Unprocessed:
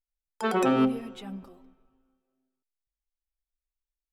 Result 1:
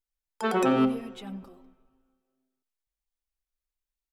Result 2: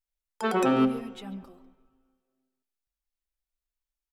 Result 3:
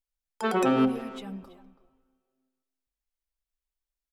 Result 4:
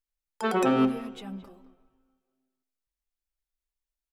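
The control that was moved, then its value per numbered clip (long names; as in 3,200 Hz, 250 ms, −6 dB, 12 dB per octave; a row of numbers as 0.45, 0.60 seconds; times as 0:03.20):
far-end echo of a speakerphone, delay time: 90, 140, 330, 220 milliseconds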